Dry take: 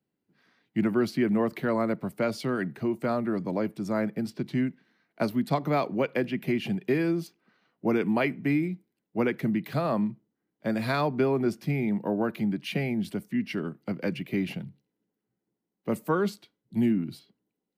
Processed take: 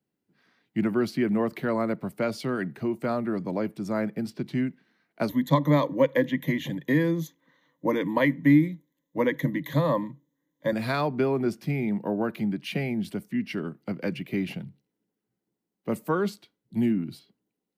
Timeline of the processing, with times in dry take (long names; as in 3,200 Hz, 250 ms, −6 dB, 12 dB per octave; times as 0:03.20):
0:05.29–0:10.73: EQ curve with evenly spaced ripples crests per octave 1.1, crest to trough 17 dB